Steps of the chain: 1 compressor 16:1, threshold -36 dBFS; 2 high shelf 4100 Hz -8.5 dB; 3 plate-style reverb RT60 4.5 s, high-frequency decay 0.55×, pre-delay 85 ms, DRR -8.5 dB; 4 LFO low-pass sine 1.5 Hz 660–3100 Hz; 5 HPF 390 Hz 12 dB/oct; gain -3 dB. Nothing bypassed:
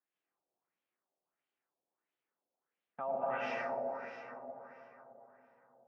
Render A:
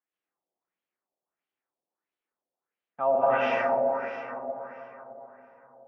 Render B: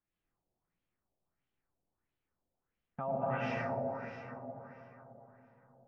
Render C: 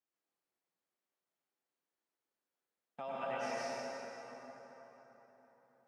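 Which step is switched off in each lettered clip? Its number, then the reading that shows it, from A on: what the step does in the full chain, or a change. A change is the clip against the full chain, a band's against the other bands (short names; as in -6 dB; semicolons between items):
1, mean gain reduction 9.0 dB; 5, 125 Hz band +18.0 dB; 4, 4 kHz band +7.5 dB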